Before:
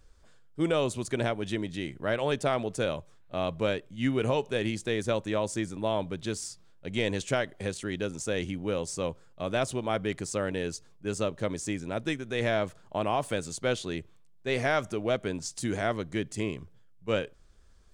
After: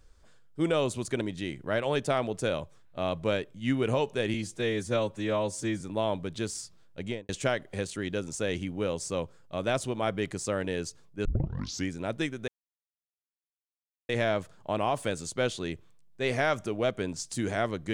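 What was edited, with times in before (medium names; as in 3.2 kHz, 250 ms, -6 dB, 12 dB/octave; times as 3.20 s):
1.21–1.57 s: delete
4.70–5.68 s: stretch 1.5×
6.87–7.16 s: studio fade out
11.12 s: tape start 0.65 s
12.35 s: insert silence 1.61 s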